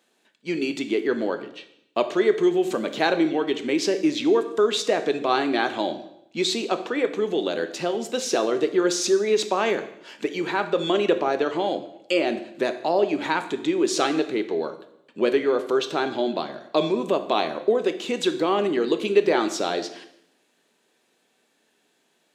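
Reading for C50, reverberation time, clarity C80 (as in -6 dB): 12.0 dB, 0.75 s, 14.5 dB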